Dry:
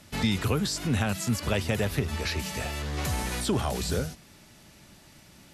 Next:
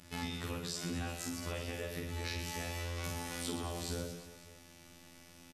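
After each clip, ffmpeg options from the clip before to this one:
ffmpeg -i in.wav -af "acompressor=threshold=-32dB:ratio=6,afftfilt=real='hypot(re,im)*cos(PI*b)':imag='0':win_size=2048:overlap=0.75,aecho=1:1:50|120|218|355.2|547.3:0.631|0.398|0.251|0.158|0.1,volume=-2dB" out.wav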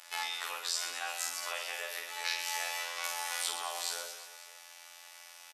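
ffmpeg -i in.wav -af "highpass=frequency=730:width=0.5412,highpass=frequency=730:width=1.3066,volume=7.5dB" out.wav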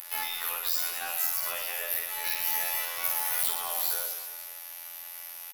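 ffmpeg -i in.wav -af "asoftclip=type=tanh:threshold=-28.5dB,aeval=exprs='0.0376*(cos(1*acos(clip(val(0)/0.0376,-1,1)))-cos(1*PI/2))+0.00075*(cos(8*acos(clip(val(0)/0.0376,-1,1)))-cos(8*PI/2))':channel_layout=same,aexciter=amount=10.3:drive=6.2:freq=11000,volume=3dB" out.wav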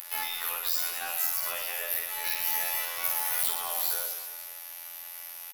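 ffmpeg -i in.wav -af "acompressor=mode=upward:threshold=-39dB:ratio=2.5" out.wav

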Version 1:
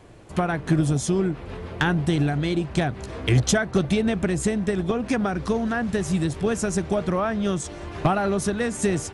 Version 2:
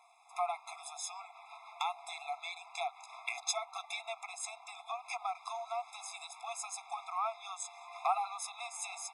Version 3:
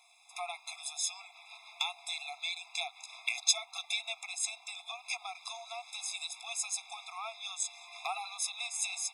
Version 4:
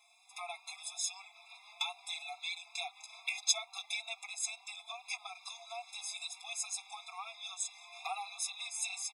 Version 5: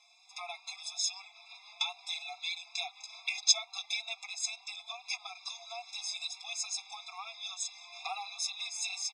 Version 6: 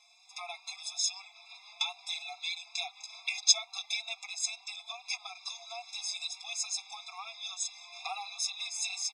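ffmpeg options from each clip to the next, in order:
ffmpeg -i in.wav -af "afftfilt=real='re*eq(mod(floor(b*sr/1024/680),2),1)':imag='im*eq(mod(floor(b*sr/1024/680),2),1)':win_size=1024:overlap=0.75,volume=-6dB" out.wav
ffmpeg -i in.wav -af "highshelf=frequency=2100:width_type=q:width=1.5:gain=12,volume=-5dB" out.wav
ffmpeg -i in.wav -filter_complex "[0:a]asplit=2[link_01][link_02];[link_02]adelay=4.3,afreqshift=2.3[link_03];[link_01][link_03]amix=inputs=2:normalize=1" out.wav
ffmpeg -i in.wav -af "lowpass=frequency=5500:width_type=q:width=2.6" out.wav
ffmpeg -i in.wav -af "crystalizer=i=0.5:c=0" -ar 32000 -c:a sbc -b:a 192k out.sbc

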